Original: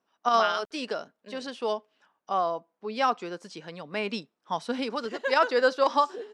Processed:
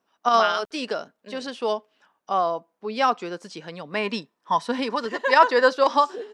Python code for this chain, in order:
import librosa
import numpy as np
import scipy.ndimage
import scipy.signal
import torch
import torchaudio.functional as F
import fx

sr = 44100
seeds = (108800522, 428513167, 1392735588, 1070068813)

y = fx.small_body(x, sr, hz=(1000.0, 1800.0), ring_ms=45, db=13, at=(3.95, 5.71))
y = y * 10.0 ** (4.0 / 20.0)